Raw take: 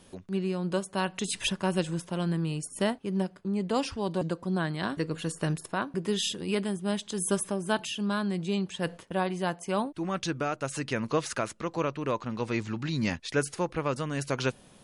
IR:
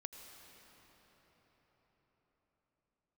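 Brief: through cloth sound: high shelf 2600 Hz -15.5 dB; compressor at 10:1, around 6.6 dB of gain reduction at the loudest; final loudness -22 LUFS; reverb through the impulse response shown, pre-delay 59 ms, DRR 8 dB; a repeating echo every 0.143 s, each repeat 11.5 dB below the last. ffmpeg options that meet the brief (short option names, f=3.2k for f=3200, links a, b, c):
-filter_complex "[0:a]acompressor=threshold=-28dB:ratio=10,aecho=1:1:143|286|429:0.266|0.0718|0.0194,asplit=2[a][b];[1:a]atrim=start_sample=2205,adelay=59[c];[b][c]afir=irnorm=-1:irlink=0,volume=-4.5dB[d];[a][d]amix=inputs=2:normalize=0,highshelf=f=2.6k:g=-15.5,volume=12.5dB"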